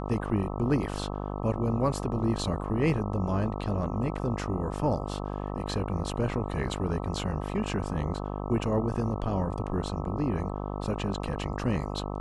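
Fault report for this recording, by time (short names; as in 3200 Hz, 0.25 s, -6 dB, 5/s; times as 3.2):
buzz 50 Hz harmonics 26 -34 dBFS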